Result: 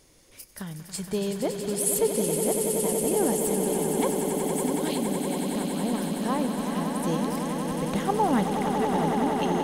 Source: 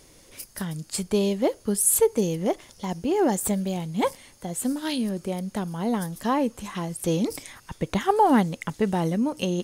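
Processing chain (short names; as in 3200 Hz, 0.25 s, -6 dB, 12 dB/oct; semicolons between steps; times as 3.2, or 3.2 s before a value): swelling echo 93 ms, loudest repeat 8, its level -8.5 dB; gain -5.5 dB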